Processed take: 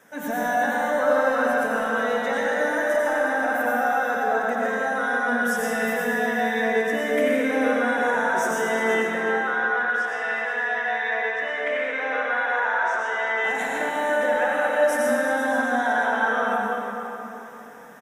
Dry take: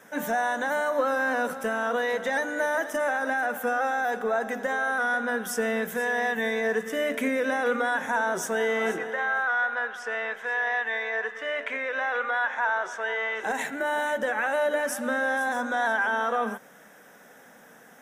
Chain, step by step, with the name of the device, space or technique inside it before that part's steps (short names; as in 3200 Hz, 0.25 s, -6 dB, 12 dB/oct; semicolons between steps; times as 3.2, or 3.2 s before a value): cave (echo 0.358 s -12.5 dB; reverb RT60 3.5 s, pre-delay 81 ms, DRR -5.5 dB); gain -3 dB